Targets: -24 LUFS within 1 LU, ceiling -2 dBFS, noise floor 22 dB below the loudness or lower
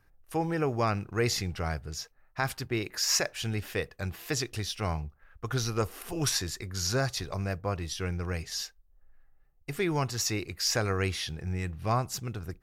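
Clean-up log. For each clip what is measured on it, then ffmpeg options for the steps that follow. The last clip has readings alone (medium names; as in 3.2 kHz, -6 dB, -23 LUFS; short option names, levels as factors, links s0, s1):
loudness -31.5 LUFS; peak level -14.5 dBFS; loudness target -24.0 LUFS
-> -af "volume=2.37"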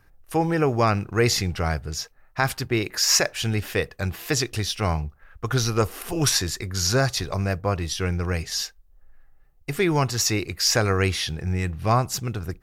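loudness -24.0 LUFS; peak level -7.0 dBFS; noise floor -56 dBFS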